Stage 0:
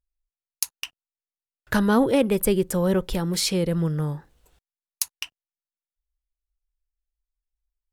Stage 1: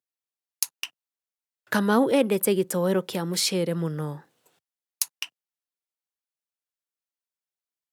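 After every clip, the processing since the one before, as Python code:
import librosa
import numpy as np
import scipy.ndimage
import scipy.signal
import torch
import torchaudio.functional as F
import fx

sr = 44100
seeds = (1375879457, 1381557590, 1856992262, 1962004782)

y = scipy.signal.sosfilt(scipy.signal.bessel(8, 210.0, 'highpass', norm='mag', fs=sr, output='sos'), x)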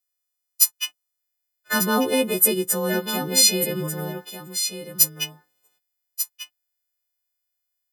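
y = fx.freq_snap(x, sr, grid_st=3)
y = y + 10.0 ** (-9.5 / 20.0) * np.pad(y, (int(1192 * sr / 1000.0), 0))[:len(y)]
y = F.gain(torch.from_numpy(y), -1.0).numpy()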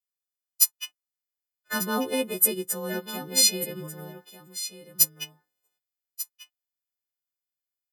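y = fx.upward_expand(x, sr, threshold_db=-30.0, expansion=1.5)
y = F.gain(torch.from_numpy(y), -2.5).numpy()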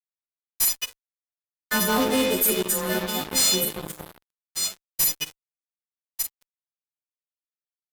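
y = fx.rev_freeverb(x, sr, rt60_s=0.67, hf_ratio=0.65, predelay_ms=15, drr_db=4.5)
y = fx.fuzz(y, sr, gain_db=29.0, gate_db=-36.0)
y = F.gain(torch.from_numpy(y), -4.5).numpy()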